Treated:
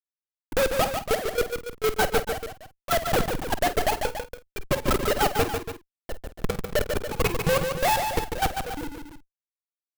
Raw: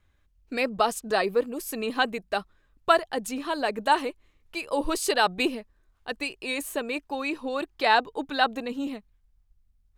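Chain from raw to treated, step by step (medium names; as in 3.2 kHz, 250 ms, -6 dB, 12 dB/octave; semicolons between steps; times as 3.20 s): formants replaced by sine waves; level-controlled noise filter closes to 970 Hz, open at -18 dBFS; in parallel at 0 dB: compression 12:1, threshold -34 dBFS, peak gain reduction 23 dB; on the sum: Schmitt trigger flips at -26 dBFS; trance gate "x...xx.xx.x.xx" 196 bpm -12 dB; doubling 49 ms -13 dB; loudspeakers at several distances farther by 50 m -6 dB, 97 m -11 dB; sampling jitter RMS 0.031 ms; trim +6.5 dB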